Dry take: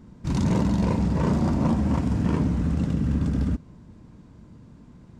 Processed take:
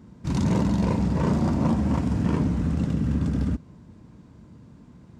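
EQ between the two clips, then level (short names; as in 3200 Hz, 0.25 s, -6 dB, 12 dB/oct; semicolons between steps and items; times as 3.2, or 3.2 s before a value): HPF 55 Hz; 0.0 dB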